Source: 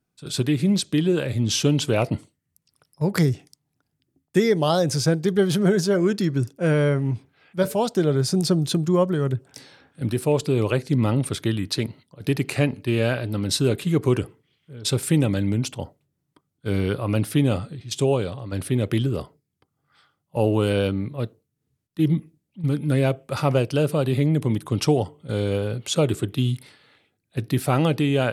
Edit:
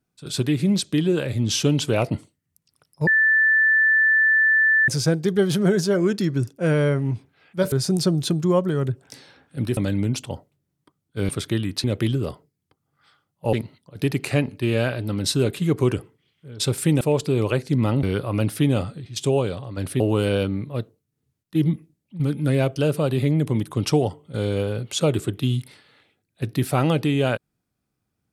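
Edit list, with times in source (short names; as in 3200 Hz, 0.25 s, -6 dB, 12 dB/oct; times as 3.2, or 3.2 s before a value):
3.07–4.88 bleep 1760 Hz -14 dBFS
7.72–8.16 cut
10.21–11.23 swap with 15.26–16.78
18.75–20.44 move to 11.78
23.2–23.71 cut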